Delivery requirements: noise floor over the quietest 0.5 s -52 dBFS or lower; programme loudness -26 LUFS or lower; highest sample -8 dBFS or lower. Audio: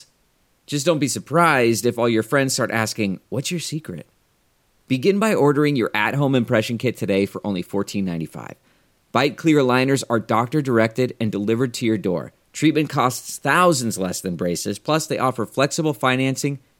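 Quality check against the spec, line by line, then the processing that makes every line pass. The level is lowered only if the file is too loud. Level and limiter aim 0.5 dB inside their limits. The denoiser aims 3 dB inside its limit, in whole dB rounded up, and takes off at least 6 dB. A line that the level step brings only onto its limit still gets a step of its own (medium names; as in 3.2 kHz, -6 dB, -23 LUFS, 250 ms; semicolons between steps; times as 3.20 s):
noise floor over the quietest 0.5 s -63 dBFS: pass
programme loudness -20.5 LUFS: fail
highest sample -3.5 dBFS: fail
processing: trim -6 dB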